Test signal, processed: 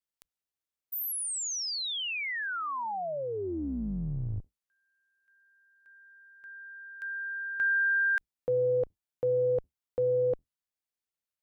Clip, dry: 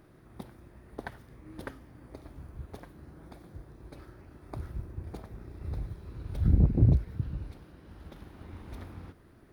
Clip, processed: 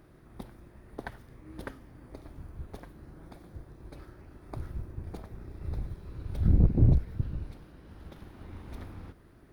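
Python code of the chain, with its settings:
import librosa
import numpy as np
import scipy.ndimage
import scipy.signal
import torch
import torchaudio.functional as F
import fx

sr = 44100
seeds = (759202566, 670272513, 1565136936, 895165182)

y = fx.octave_divider(x, sr, octaves=2, level_db=-5.0)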